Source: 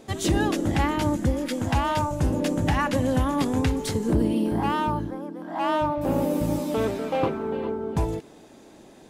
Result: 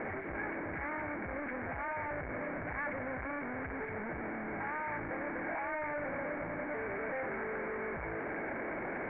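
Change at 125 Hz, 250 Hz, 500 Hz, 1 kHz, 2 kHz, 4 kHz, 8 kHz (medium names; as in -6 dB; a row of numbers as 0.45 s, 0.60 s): -21.0 dB, -17.0 dB, -11.5 dB, -12.0 dB, -2.0 dB, under -35 dB, under -40 dB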